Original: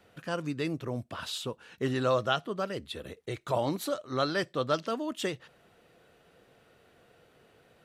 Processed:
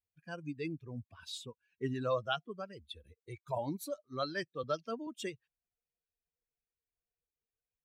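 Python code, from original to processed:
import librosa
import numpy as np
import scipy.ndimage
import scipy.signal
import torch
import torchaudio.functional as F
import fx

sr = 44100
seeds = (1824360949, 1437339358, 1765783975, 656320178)

y = fx.bin_expand(x, sr, power=2.0)
y = fx.band_squash(y, sr, depth_pct=40, at=(4.63, 5.07))
y = y * librosa.db_to_amplitude(-3.5)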